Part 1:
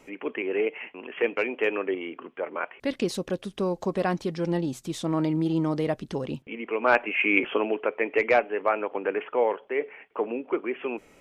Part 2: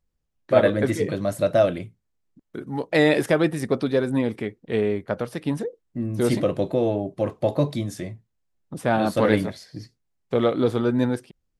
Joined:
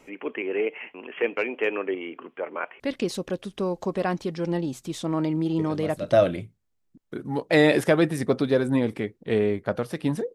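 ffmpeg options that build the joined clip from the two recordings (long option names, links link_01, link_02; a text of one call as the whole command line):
ffmpeg -i cue0.wav -i cue1.wav -filter_complex "[1:a]asplit=2[link_01][link_02];[0:a]apad=whole_dur=10.34,atrim=end=10.34,atrim=end=6.122[link_03];[link_02]atrim=start=1.538:end=5.76[link_04];[link_01]atrim=start=1.01:end=1.54,asetpts=PTS-STARTPTS,volume=-11dB,afade=type=in:duration=0.004:curve=hsin,afade=type=out:start_time=0.526:duration=0.004:curve=hsin,adelay=5590[link_05];[link_03][link_04]acrossfade=duration=0.004:curve1=hsin:curve2=hsin[link_06];[link_06][link_05]amix=inputs=2:normalize=0" out.wav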